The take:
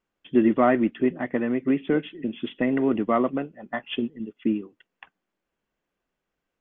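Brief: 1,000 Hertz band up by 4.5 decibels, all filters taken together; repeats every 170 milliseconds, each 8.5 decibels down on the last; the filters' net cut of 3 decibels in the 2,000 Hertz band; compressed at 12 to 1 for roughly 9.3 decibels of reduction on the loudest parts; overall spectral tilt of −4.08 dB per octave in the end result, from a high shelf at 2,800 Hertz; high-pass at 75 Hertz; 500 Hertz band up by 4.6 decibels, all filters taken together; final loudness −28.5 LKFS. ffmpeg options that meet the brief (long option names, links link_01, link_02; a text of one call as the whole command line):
ffmpeg -i in.wav -af "highpass=75,equalizer=frequency=500:width_type=o:gain=5,equalizer=frequency=1000:width_type=o:gain=6,equalizer=frequency=2000:width_type=o:gain=-4.5,highshelf=frequency=2800:gain=-4,acompressor=threshold=-20dB:ratio=12,aecho=1:1:170|340|510|680:0.376|0.143|0.0543|0.0206,volume=-1.5dB" out.wav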